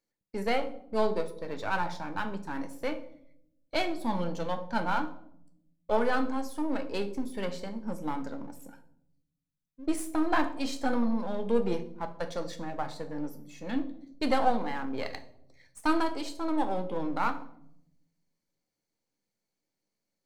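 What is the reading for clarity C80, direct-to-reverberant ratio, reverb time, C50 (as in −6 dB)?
17.0 dB, 8.0 dB, 0.75 s, 13.5 dB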